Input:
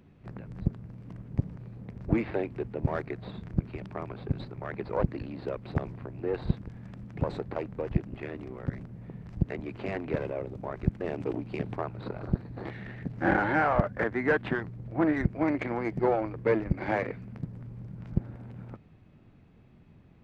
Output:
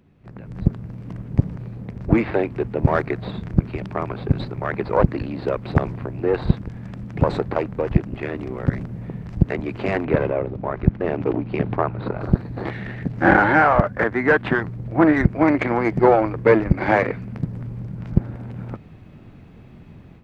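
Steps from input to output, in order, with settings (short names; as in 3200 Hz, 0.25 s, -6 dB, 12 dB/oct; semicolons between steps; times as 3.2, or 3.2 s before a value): dynamic EQ 1200 Hz, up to +3 dB, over -44 dBFS, Q 1.1; AGC gain up to 13 dB; 10.05–12.2 air absorption 200 m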